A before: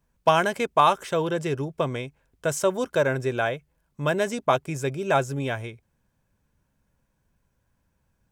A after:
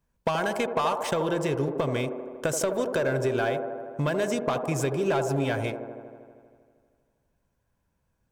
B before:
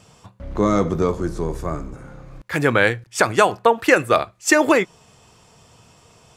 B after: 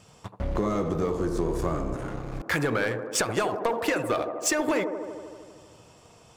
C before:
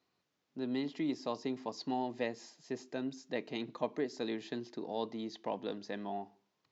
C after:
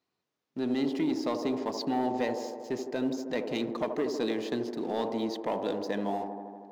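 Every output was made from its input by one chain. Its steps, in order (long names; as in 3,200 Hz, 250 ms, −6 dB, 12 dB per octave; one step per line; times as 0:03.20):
leveller curve on the samples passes 2
downward compressor 12 to 1, threshold −24 dBFS
on a send: delay with a band-pass on its return 79 ms, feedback 76%, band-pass 510 Hz, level −5.5 dB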